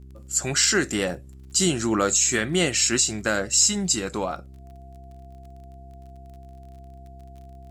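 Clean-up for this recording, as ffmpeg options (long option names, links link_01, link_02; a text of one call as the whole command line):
ffmpeg -i in.wav -af "adeclick=threshold=4,bandreject=frequency=65.9:width_type=h:width=4,bandreject=frequency=131.8:width_type=h:width=4,bandreject=frequency=197.7:width_type=h:width=4,bandreject=frequency=263.6:width_type=h:width=4,bandreject=frequency=329.5:width_type=h:width=4,bandreject=frequency=395.4:width_type=h:width=4,bandreject=frequency=690:width=30" out.wav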